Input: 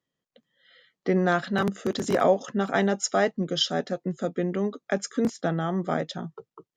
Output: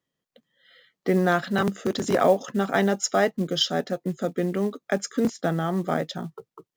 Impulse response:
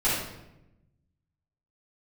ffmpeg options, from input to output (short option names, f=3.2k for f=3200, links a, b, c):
-af "acrusher=bits=7:mode=log:mix=0:aa=0.000001,volume=1.5dB"